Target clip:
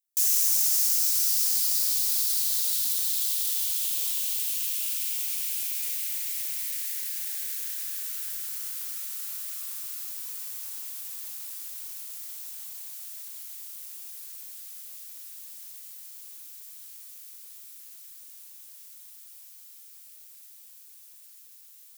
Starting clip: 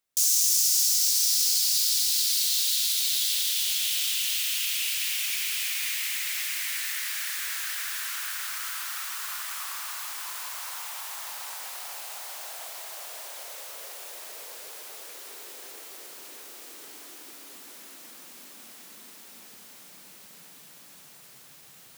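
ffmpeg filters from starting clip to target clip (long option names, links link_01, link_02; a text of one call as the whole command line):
ffmpeg -i in.wav -af "aeval=exprs='max(val(0),0)':channel_layout=same,aderivative,aeval=exprs='0.376*(cos(1*acos(clip(val(0)/0.376,-1,1)))-cos(1*PI/2))+0.00299*(cos(8*acos(clip(val(0)/0.376,-1,1)))-cos(8*PI/2))':channel_layout=same,volume=1.5dB" out.wav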